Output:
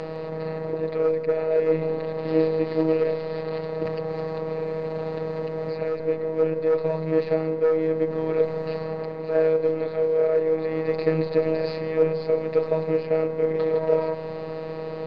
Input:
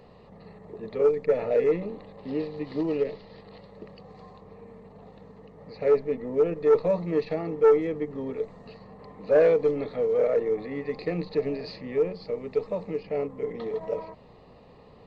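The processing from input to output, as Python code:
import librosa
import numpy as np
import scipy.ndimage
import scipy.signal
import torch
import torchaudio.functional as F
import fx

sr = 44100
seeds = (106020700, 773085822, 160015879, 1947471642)

y = fx.bin_compress(x, sr, power=0.6)
y = fx.rider(y, sr, range_db=5, speed_s=0.5)
y = fx.robotise(y, sr, hz=159.0)
y = fx.air_absorb(y, sr, metres=86.0)
y = y + 10.0 ** (-16.5 / 20.0) * np.pad(y, (int(159 * sr / 1000.0), 0))[:len(y)]
y = fx.band_squash(y, sr, depth_pct=100, at=(3.85, 6.0))
y = y * 10.0 ** (1.5 / 20.0)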